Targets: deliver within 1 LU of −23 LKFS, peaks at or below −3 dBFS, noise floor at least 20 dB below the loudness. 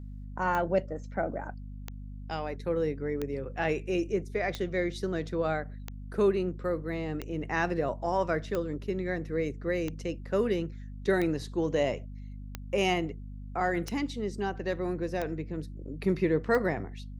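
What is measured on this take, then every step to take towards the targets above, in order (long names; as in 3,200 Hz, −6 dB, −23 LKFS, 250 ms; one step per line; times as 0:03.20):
number of clicks 13; mains hum 50 Hz; hum harmonics up to 250 Hz; level of the hum −39 dBFS; integrated loudness −31.0 LKFS; sample peak −13.0 dBFS; target loudness −23.0 LKFS
→ click removal
hum removal 50 Hz, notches 5
level +8 dB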